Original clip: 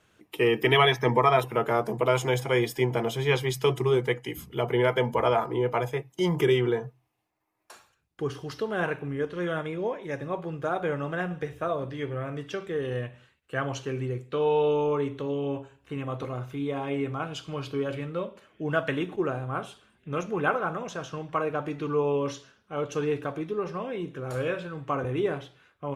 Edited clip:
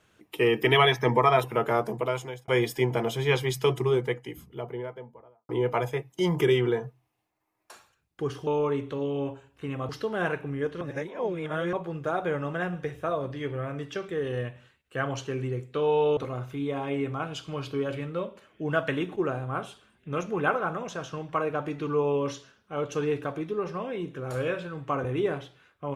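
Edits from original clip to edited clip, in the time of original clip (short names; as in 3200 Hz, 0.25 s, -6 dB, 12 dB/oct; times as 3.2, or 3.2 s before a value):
1.79–2.48 fade out
3.54–5.49 studio fade out
9.39–10.31 reverse
14.75–16.17 move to 8.47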